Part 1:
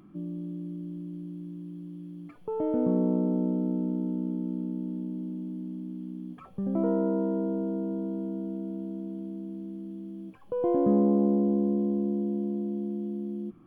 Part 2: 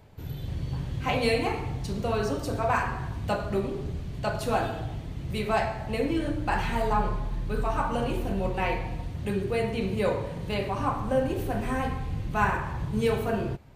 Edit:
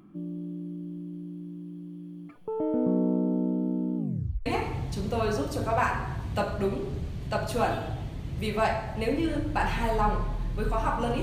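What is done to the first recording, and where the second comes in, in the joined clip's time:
part 1
3.97 tape stop 0.49 s
4.46 switch to part 2 from 1.38 s

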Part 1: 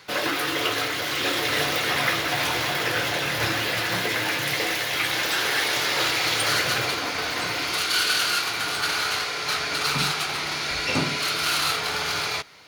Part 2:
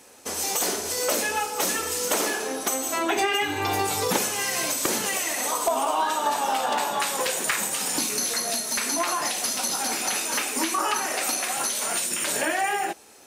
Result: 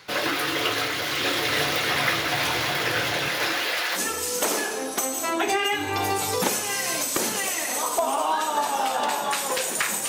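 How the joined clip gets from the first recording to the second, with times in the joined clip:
part 1
3.28–4 HPF 220 Hz -> 650 Hz
3.97 switch to part 2 from 1.66 s, crossfade 0.06 s

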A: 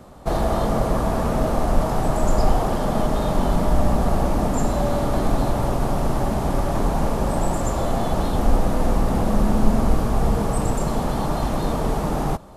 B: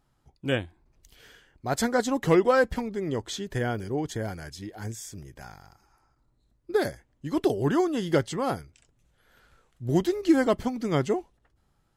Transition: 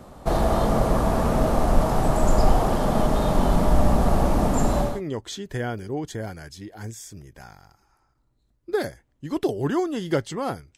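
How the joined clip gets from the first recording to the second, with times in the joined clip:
A
4.9 switch to B from 2.91 s, crossfade 0.24 s

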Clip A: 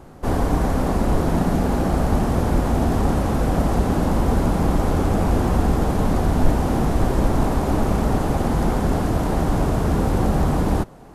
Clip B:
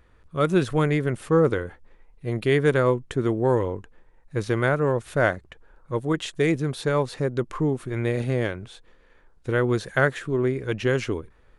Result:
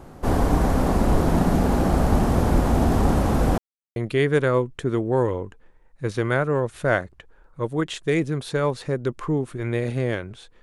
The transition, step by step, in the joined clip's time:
clip A
3.58–3.96 mute
3.96 switch to clip B from 2.28 s

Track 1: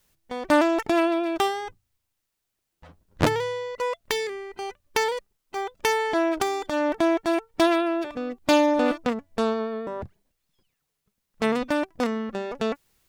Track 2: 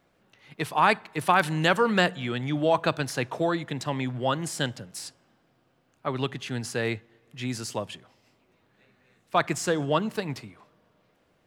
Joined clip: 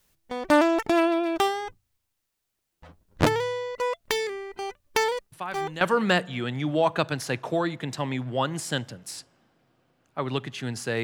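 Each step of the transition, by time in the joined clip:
track 1
5.32 add track 2 from 1.2 s 0.49 s -13 dB
5.81 switch to track 2 from 1.69 s

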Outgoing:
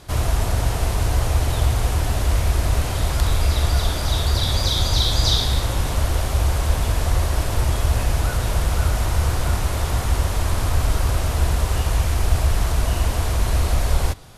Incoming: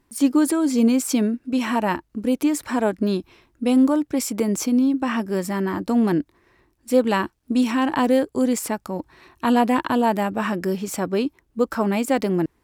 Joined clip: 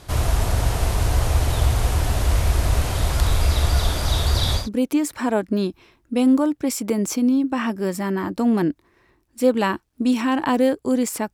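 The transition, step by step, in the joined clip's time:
outgoing
4.61 switch to incoming from 2.11 s, crossfade 0.16 s

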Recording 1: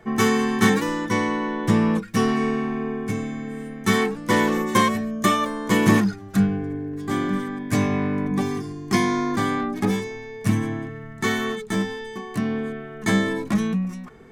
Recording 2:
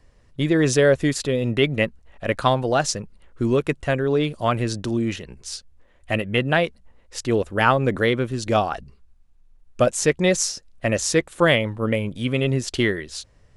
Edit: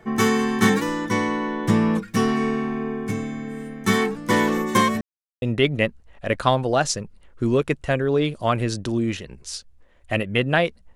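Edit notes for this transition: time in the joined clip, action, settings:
recording 1
5.01–5.42 mute
5.42 switch to recording 2 from 1.41 s

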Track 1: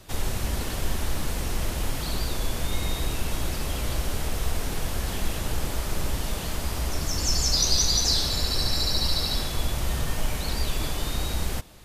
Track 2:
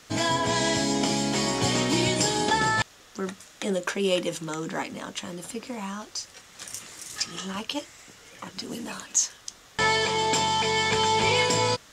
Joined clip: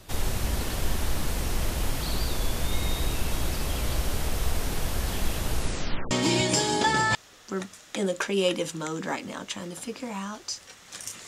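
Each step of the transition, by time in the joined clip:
track 1
5.52 tape stop 0.59 s
6.11 switch to track 2 from 1.78 s

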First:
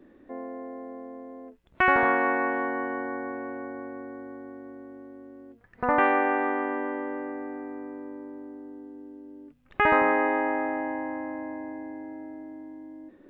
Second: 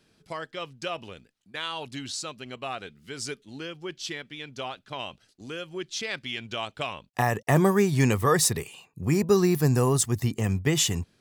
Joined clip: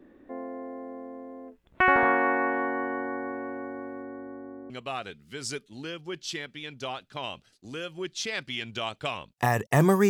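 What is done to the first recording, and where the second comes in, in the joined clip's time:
first
4.02–4.7 LPF 3300 Hz -> 1100 Hz
4.7 switch to second from 2.46 s

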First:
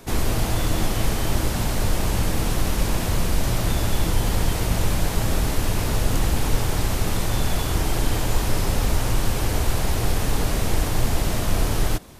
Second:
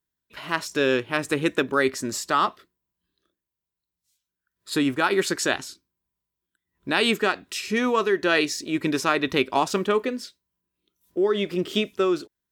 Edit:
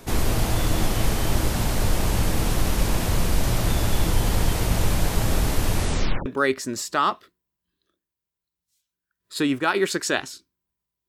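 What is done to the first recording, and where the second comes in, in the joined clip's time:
first
5.74 tape stop 0.52 s
6.26 switch to second from 1.62 s

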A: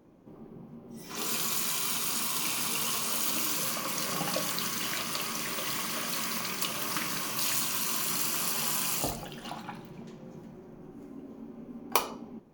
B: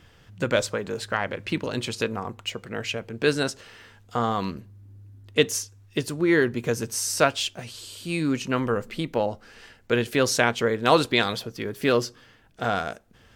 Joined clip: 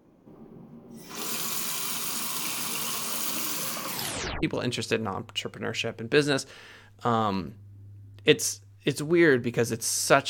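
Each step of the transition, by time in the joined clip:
A
3.88 tape stop 0.55 s
4.43 switch to B from 1.53 s

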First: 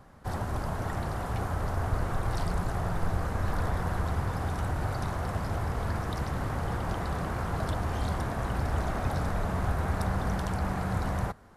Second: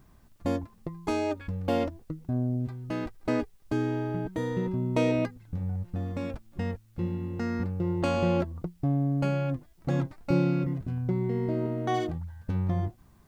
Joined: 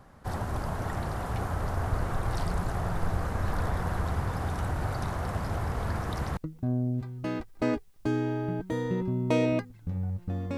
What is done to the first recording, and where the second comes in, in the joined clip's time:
first
6.37 switch to second from 2.03 s

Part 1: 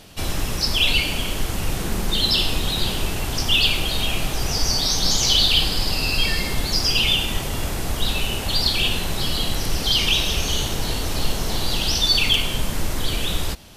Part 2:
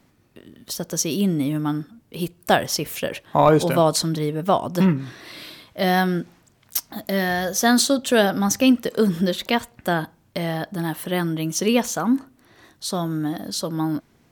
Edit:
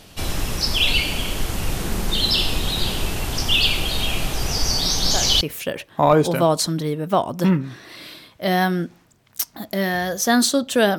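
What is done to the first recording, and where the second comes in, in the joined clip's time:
part 1
4.8 add part 2 from 2.16 s 0.61 s -11 dB
5.41 switch to part 2 from 2.77 s

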